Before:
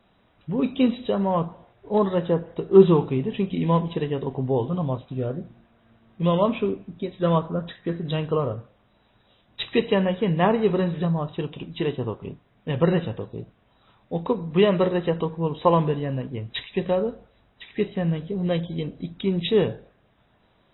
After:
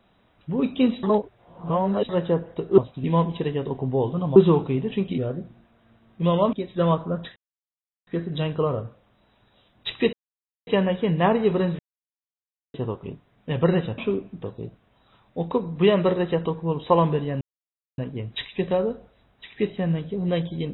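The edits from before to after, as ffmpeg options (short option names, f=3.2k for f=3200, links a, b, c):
-filter_complex "[0:a]asplit=15[a][b][c][d][e][f][g][h][i][j][k][l][m][n][o];[a]atrim=end=1.032[p];[b]atrim=start=1.028:end=2.092,asetpts=PTS-STARTPTS,areverse[q];[c]atrim=start=2.088:end=2.782[r];[d]atrim=start=4.918:end=5.182[s];[e]atrim=start=3.598:end=4.922[t];[f]atrim=start=2.778:end=3.602[u];[g]atrim=start=5.178:end=6.532[v];[h]atrim=start=6.968:end=7.8,asetpts=PTS-STARTPTS,afade=t=out:st=0.828:d=0.004:c=hsin,apad=pad_dur=0.71[w];[i]atrim=start=7.8:end=9.86,asetpts=PTS-STARTPTS,afade=t=in:d=0.004:c=hsin,afade=t=out:st=2.056:d=0.004:c=hsin,apad=pad_dur=0.54[x];[j]atrim=start=9.86:end=10.98,asetpts=PTS-STARTPTS,afade=t=in:d=0.004:c=hsin,afade=t=out:st=1.116:d=0.004:c=hsin[y];[k]atrim=start=10.98:end=11.93,asetpts=PTS-STARTPTS,volume=0[z];[l]atrim=start=11.93:end=13.172,asetpts=PTS-STARTPTS,afade=t=in:d=0.004:c=hsin[aa];[m]atrim=start=6.528:end=6.972[ab];[n]atrim=start=13.168:end=16.16,asetpts=PTS-STARTPTS,afade=t=out:st=2.988:d=0.004:c=hsin,apad=pad_dur=0.57[ac];[o]atrim=start=16.16,asetpts=PTS-STARTPTS,afade=t=in:d=0.004:c=hsin[ad];[p][q]acrossfade=d=0.004:c1=hsin:c2=hsin[ae];[ae][r]acrossfade=d=0.004:c1=hsin:c2=hsin[af];[af][s]acrossfade=d=0.004:c1=hsin:c2=hsin[ag];[ag][t]acrossfade=d=0.004:c1=hsin:c2=hsin[ah];[ah][u]acrossfade=d=0.004:c1=hsin:c2=hsin[ai];[ai][v]acrossfade=d=0.004:c1=hsin:c2=hsin[aj];[w][x][y][z][aa]concat=n=5:v=0:a=1[ak];[aj][ak]acrossfade=d=0.004:c1=hsin:c2=hsin[al];[al][ab]acrossfade=d=0.004:c1=hsin:c2=hsin[am];[ac][ad]concat=n=2:v=0:a=1[an];[am][an]acrossfade=d=0.004:c1=hsin:c2=hsin"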